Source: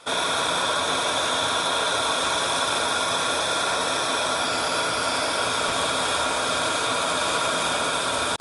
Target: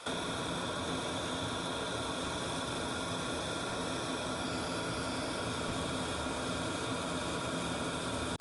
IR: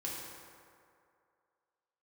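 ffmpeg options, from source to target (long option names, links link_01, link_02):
-filter_complex "[0:a]acrossover=split=330[link_01][link_02];[link_02]acompressor=threshold=-38dB:ratio=6[link_03];[link_01][link_03]amix=inputs=2:normalize=0"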